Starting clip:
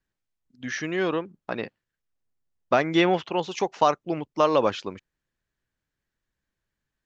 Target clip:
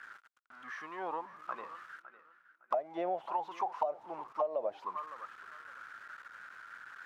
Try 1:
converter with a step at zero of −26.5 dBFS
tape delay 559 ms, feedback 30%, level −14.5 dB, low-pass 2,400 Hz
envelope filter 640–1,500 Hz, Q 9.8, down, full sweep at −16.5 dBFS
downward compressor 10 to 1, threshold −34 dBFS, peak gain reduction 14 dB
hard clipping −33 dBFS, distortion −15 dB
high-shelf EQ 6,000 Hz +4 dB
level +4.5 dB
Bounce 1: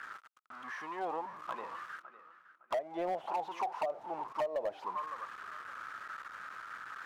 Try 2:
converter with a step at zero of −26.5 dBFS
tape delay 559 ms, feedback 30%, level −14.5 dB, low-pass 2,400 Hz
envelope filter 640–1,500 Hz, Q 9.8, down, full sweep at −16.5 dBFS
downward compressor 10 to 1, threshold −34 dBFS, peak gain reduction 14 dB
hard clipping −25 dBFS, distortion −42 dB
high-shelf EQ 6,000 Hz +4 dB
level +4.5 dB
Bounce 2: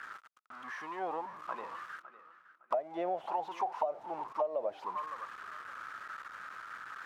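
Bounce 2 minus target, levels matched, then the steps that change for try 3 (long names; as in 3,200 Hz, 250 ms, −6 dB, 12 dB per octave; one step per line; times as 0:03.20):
converter with a step at zero: distortion +5 dB
change: converter with a step at zero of −32.5 dBFS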